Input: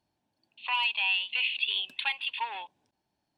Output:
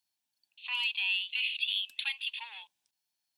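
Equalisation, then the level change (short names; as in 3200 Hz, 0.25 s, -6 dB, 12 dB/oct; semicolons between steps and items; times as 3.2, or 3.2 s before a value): tilt +3.5 dB/oct; passive tone stack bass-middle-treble 5-5-5; low shelf 390 Hz +2.5 dB; 0.0 dB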